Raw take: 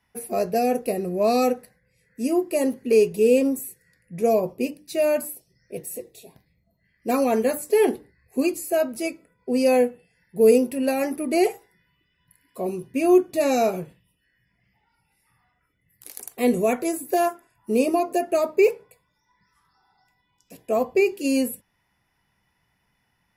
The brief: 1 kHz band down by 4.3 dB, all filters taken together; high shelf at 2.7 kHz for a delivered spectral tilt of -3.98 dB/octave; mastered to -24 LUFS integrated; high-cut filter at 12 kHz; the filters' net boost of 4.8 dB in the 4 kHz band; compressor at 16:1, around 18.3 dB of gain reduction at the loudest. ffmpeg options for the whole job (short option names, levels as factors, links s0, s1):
-af "lowpass=12000,equalizer=f=1000:t=o:g=-8.5,highshelf=f=2700:g=4,equalizer=f=4000:t=o:g=3,acompressor=threshold=0.0282:ratio=16,volume=4.22"